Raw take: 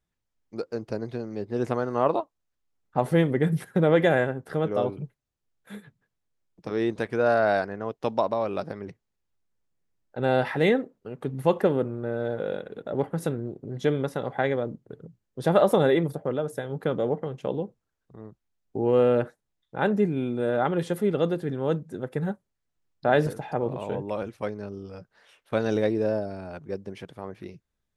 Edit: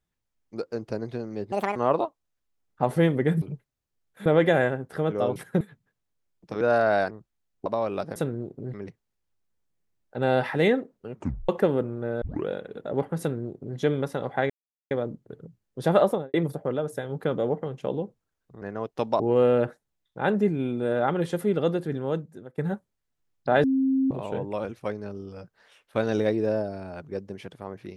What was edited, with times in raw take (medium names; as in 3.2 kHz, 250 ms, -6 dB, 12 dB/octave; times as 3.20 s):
1.52–1.91 s: speed 164%
3.57–3.82 s: swap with 4.92–5.76 s
6.76–7.17 s: delete
7.67–8.25 s: swap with 18.22–18.77 s
11.15 s: tape stop 0.35 s
12.23 s: tape start 0.26 s
13.21–13.79 s: copy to 8.75 s
14.51 s: insert silence 0.41 s
15.58–15.94 s: studio fade out
21.53–22.15 s: fade out linear, to -18 dB
23.21–23.68 s: bleep 266 Hz -19.5 dBFS